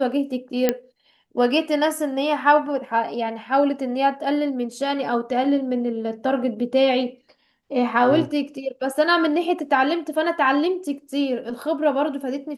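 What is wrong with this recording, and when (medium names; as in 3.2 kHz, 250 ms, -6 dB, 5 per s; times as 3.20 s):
0.69 s: pop -5 dBFS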